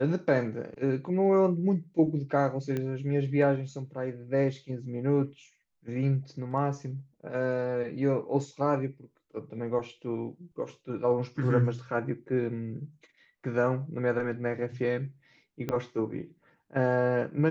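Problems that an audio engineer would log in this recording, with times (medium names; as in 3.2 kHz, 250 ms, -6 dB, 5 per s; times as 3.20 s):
2.77 s: pop -20 dBFS
15.69 s: pop -18 dBFS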